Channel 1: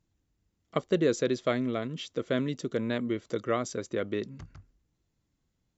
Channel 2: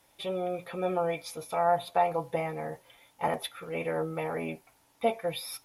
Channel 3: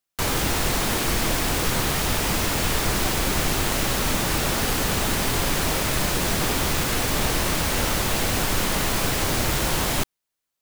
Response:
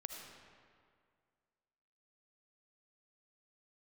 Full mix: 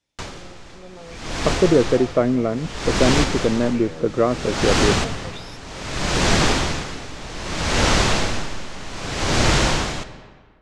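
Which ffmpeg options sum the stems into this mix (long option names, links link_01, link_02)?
-filter_complex "[0:a]lowpass=1100,adelay=700,volume=3dB[link_01];[1:a]equalizer=frequency=910:width=0.67:gain=-12.5,volume=-8.5dB,asplit=2[link_02][link_03];[2:a]aeval=exprs='val(0)*pow(10,-19*(0.5-0.5*cos(2*PI*0.63*n/s))/20)':channel_layout=same,volume=-4.5dB,asplit=2[link_04][link_05];[link_05]volume=-3.5dB[link_06];[link_03]apad=whole_len=468290[link_07];[link_04][link_07]sidechaincompress=threshold=-53dB:ratio=8:attack=37:release=360[link_08];[3:a]atrim=start_sample=2205[link_09];[link_06][link_09]afir=irnorm=-1:irlink=0[link_10];[link_01][link_02][link_08][link_10]amix=inputs=4:normalize=0,lowpass=frequency=7100:width=0.5412,lowpass=frequency=7100:width=1.3066,dynaudnorm=framelen=460:gausssize=5:maxgain=9.5dB"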